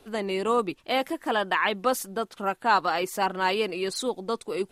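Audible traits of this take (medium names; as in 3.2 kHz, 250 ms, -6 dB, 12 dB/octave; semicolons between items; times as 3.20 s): noise floor -60 dBFS; spectral tilt -3.0 dB/octave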